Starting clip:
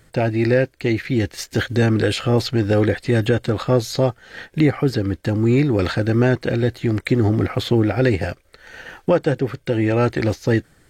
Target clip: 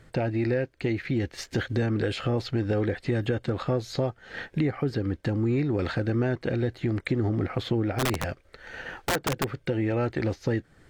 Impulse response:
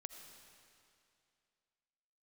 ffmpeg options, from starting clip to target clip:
-filter_complex "[0:a]acompressor=threshold=-27dB:ratio=2.5,aemphasis=mode=reproduction:type=50kf,asplit=3[a][b][c];[a]afade=t=out:st=7.98:d=0.02[d];[b]aeval=exprs='(mod(9.44*val(0)+1,2)-1)/9.44':c=same,afade=t=in:st=7.98:d=0.02,afade=t=out:st=9.55:d=0.02[e];[c]afade=t=in:st=9.55:d=0.02[f];[d][e][f]amix=inputs=3:normalize=0"

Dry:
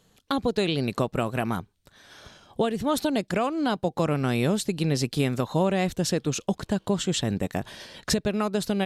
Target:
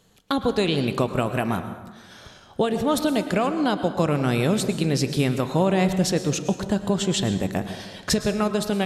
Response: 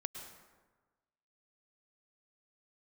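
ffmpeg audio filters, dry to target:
-filter_complex "[0:a]asplit=2[a][b];[1:a]atrim=start_sample=2205[c];[b][c]afir=irnorm=-1:irlink=0,volume=4.5dB[d];[a][d]amix=inputs=2:normalize=0,flanger=delay=9.3:depth=2.5:regen=-90:speed=0.63:shape=triangular"

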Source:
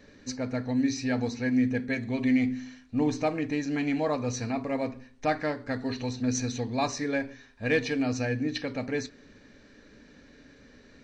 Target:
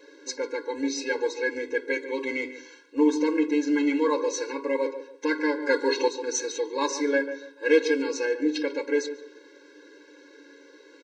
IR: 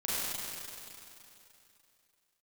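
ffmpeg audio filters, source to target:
-filter_complex "[0:a]asettb=1/sr,asplit=3[a][b][c];[a]atrim=end=5.624[d];[b]atrim=start=5.62:end=6.08,asetpts=PTS-STARTPTS,afade=t=in:d=0.004:c=qsin,afade=t=out:st=0.456:d=0.004:c=qsin,acontrast=77[e];[c]atrim=start=6.076[f];[d][e]acrossfade=d=0.004:c1=hsin:c2=qsin[g];[g][f]acrossfade=d=0.004:c1=qsin:c2=hsin,asplit=2[h][i];[i]adelay=144,lowpass=f=1.4k:p=1,volume=-10.5dB,asplit=2[j][k];[k]adelay=144,lowpass=f=1.4k:p=1,volume=0.32,asplit=2[l][m];[m]adelay=144,lowpass=f=1.4k:p=1,volume=0.32[n];[h][j][l][n]amix=inputs=4:normalize=0,afftfilt=real='re*eq(mod(floor(b*sr/1024/280),2),1)':imag='im*eq(mod(floor(b*sr/1024/280),2),1)':win_size=1024:overlap=0.75,volume=7.5dB"

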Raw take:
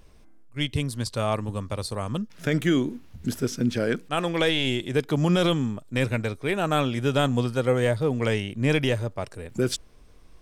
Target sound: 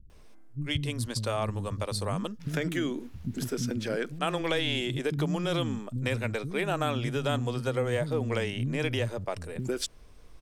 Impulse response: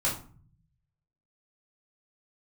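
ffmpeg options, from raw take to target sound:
-filter_complex "[0:a]acompressor=threshold=-24dB:ratio=6,acrossover=split=240[a][b];[b]adelay=100[c];[a][c]amix=inputs=2:normalize=0"

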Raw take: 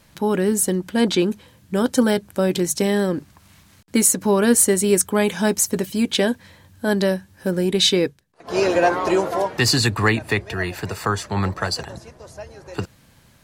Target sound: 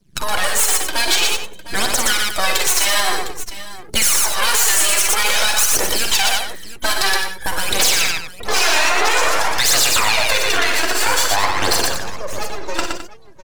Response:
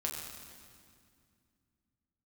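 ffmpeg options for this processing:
-filter_complex "[0:a]afftfilt=real='re*lt(hypot(re,im),0.251)':imag='im*lt(hypot(re,im),0.251)':win_size=1024:overlap=0.75,aemphasis=mode=production:type=50fm,afftdn=nr=30:nf=-43,highpass=260,lowpass=6.6k,aeval=exprs='max(val(0),0)':c=same,aphaser=in_gain=1:out_gain=1:delay=3.3:decay=0.62:speed=0.51:type=triangular,asoftclip=type=tanh:threshold=-15dB,aecho=1:1:46|59|118|212|706:0.316|0.266|0.596|0.224|0.15,acrossover=split=410|3000[a][b][c];[a]acompressor=threshold=-34dB:ratio=5[d];[d][b][c]amix=inputs=3:normalize=0,alimiter=level_in=19dB:limit=-1dB:release=50:level=0:latency=1,volume=-3.5dB"

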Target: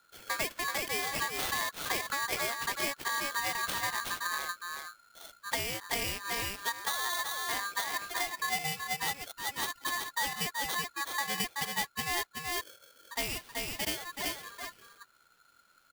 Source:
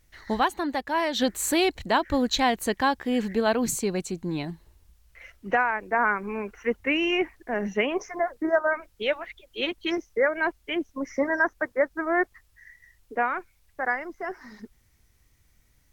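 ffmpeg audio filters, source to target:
-filter_complex "[0:a]asettb=1/sr,asplit=3[a][b][c];[a]atrim=end=13.164[d];[b]atrim=start=13.16:end=13.97,asetpts=PTS-STARTPTS,afade=t=in:d=0.004:c=qsin,afade=t=out:st=0.806:d=0.004:c=qsin,aemphasis=mode=production:type=riaa[e];[c]atrim=start=13.966[f];[d][e]acrossfade=d=0.004:c1=hsin:c2=qsin[g];[g][f]acrossfade=d=0.004:c1=qsin:c2=hsin,aecho=1:1:378:0.473,acrusher=samples=9:mix=1:aa=0.000001,highshelf=f=10k:g=8.5,acompressor=threshold=-25dB:ratio=6,aeval=exprs='val(0)*sgn(sin(2*PI*1400*n/s))':c=same,volume=-4.5dB"

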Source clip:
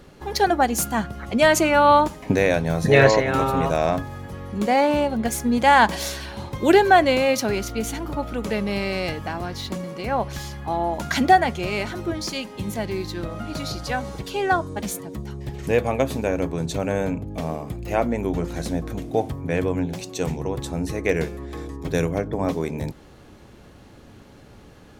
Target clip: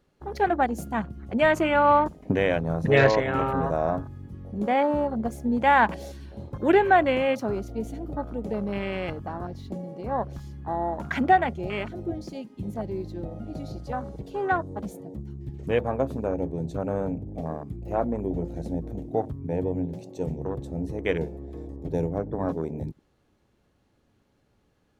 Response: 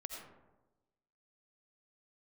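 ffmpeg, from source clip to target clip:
-af "afwtdn=0.0398,volume=-4dB"

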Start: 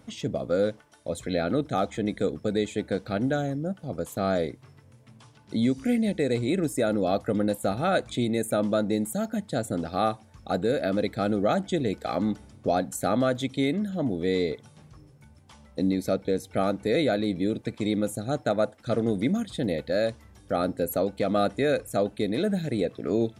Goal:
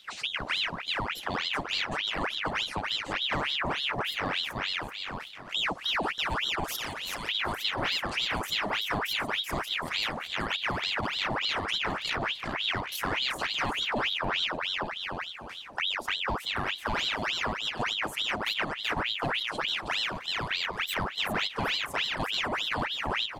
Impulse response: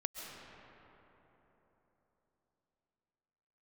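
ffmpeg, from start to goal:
-filter_complex "[0:a]asettb=1/sr,asplit=3[a][b][c];[a]atrim=end=3.324[d];[b]atrim=start=3.32:end=4.03,asetpts=PTS-STARTPTS,afade=t=in:d=0.004:c=qsin,afade=t=out:st=0.706:d=0.004:c=qsin,acontrast=23[e];[c]atrim=start=4.026[f];[d][e]acrossfade=d=0.004:c1=hsin:c2=qsin[g];[g][f]acrossfade=d=0.004:c1=qsin:c2=hsin,asettb=1/sr,asplit=3[h][i][j];[h]atrim=end=13.874[k];[i]atrim=start=13.87:end=14.47,asetpts=PTS-STARTPTS,afade=t=in:d=0.004:c=qsin,afade=t=out:st=0.596:d=0.004:c=qsin,bass=f=250:g=10,treble=f=4k:g=-13[l];[j]atrim=start=14.466[m];[k][l]acrossfade=d=0.004:c1=hsin:c2=qsin[n];[n][m]acrossfade=d=0.004:c1=qsin:c2=hsin,aecho=1:1:382|764|1146|1528|1910:0.596|0.22|0.0815|0.0302|0.0112,volume=16.5dB,asoftclip=hard,volume=-16.5dB,acompressor=threshold=-29dB:ratio=3,asettb=1/sr,asplit=3[o][p][q];[o]atrim=end=6.644[r];[p]atrim=start=6.64:end=7.29,asetpts=PTS-STARTPTS,afade=t=in:d=0.004:c=qsin,afade=t=out:st=0.646:d=0.004:c=qsin,tiltshelf=f=1.5k:g=-8.5[s];[q]atrim=start=7.286[t];[r][s]acrossfade=d=0.004:c1=hsin:c2=qsin[u];[u][t]acrossfade=d=0.004:c1=qsin:c2=hsin,asplit=2[v][w];[w]lowpass=6.2k[x];[1:a]atrim=start_sample=2205[y];[x][y]afir=irnorm=-1:irlink=0,volume=-11.5dB[z];[v][z]amix=inputs=2:normalize=0,aeval=exprs='val(0)*sin(2*PI*2000*n/s+2000*0.8/3.4*sin(2*PI*3.4*n/s))':c=same,volume=1dB"

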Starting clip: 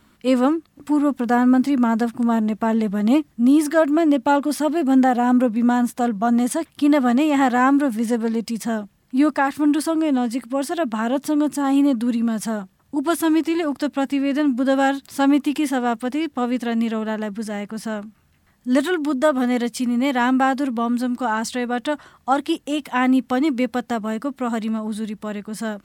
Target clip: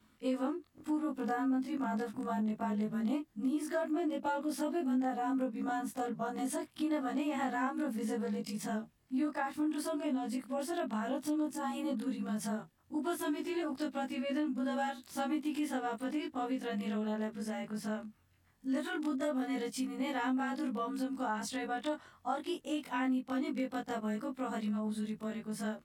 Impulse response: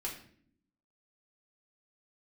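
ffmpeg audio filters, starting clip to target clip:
-af "afftfilt=real='re':imag='-im':win_size=2048:overlap=0.75,acompressor=threshold=-26dB:ratio=3,volume=-6.5dB"

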